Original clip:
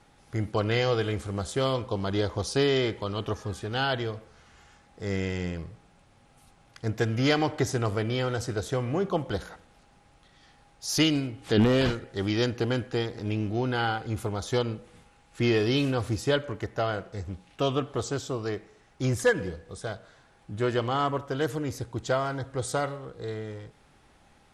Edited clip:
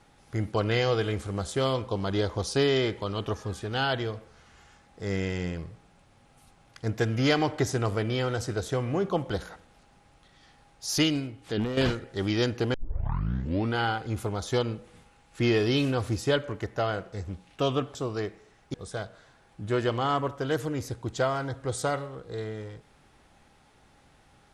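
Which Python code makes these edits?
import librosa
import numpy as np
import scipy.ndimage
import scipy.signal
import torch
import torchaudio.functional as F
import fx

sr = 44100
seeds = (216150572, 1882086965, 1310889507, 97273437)

y = fx.edit(x, sr, fx.fade_out_to(start_s=10.87, length_s=0.9, floor_db=-11.0),
    fx.tape_start(start_s=12.74, length_s=1.03),
    fx.cut(start_s=17.95, length_s=0.29),
    fx.cut(start_s=19.03, length_s=0.61), tone=tone)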